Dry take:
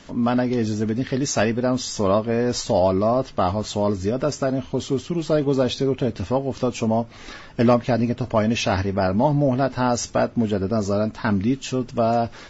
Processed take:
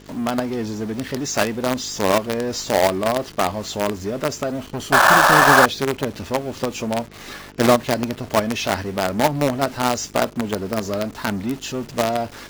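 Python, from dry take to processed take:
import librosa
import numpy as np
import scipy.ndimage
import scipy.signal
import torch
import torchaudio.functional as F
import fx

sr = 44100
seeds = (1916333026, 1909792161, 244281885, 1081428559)

p1 = fx.lower_of_two(x, sr, delay_ms=0.67, at=(4.66, 5.56))
p2 = fx.spec_paint(p1, sr, seeds[0], shape='noise', start_s=4.92, length_s=0.74, low_hz=530.0, high_hz=1800.0, level_db=-15.0)
p3 = fx.quant_companded(p2, sr, bits=2)
p4 = p2 + (p3 * librosa.db_to_amplitude(-6.5))
p5 = fx.dmg_buzz(p4, sr, base_hz=50.0, harmonics=9, level_db=-38.0, tilt_db=-4, odd_only=False)
p6 = fx.low_shelf(p5, sr, hz=120.0, db=-10.0)
y = p6 * librosa.db_to_amplitude(-3.5)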